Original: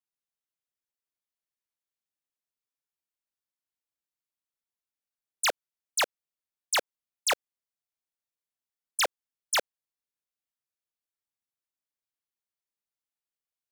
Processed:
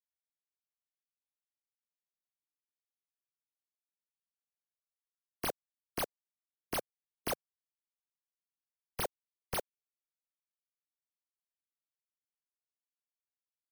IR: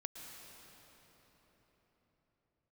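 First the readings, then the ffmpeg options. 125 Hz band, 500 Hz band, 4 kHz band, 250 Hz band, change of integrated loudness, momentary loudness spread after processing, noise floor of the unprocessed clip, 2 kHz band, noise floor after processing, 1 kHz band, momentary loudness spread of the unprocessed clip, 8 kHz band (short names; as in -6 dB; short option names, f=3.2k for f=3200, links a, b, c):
n/a, -6.0 dB, -14.5 dB, +6.0 dB, -10.0 dB, 3 LU, under -85 dBFS, -14.0 dB, under -85 dBFS, -9.5 dB, 4 LU, -13.5 dB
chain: -af "acrusher=samples=6:mix=1:aa=0.000001,afftfilt=real='re*gte(hypot(re,im),0.00631)':imag='im*gte(hypot(re,im),0.00631)':win_size=1024:overlap=0.75,equalizer=f=2.4k:w=0.35:g=-13.5,volume=-2dB"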